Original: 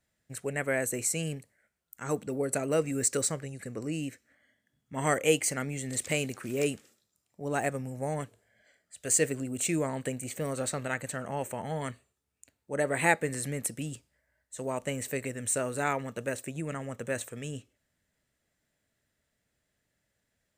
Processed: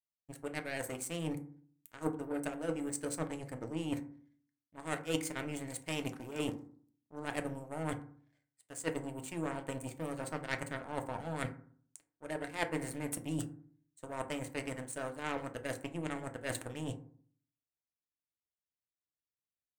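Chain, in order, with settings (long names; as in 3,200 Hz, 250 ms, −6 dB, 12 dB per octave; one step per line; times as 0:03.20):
high-shelf EQ 2,900 Hz −5.5 dB
reversed playback
downward compressor 10 to 1, threshold −43 dBFS, peak gain reduction 23.5 dB
reversed playback
power curve on the samples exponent 2
feedback delay network reverb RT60 0.52 s, low-frequency decay 1.35×, high-frequency decay 0.4×, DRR 5.5 dB
speed change +4%
level +16 dB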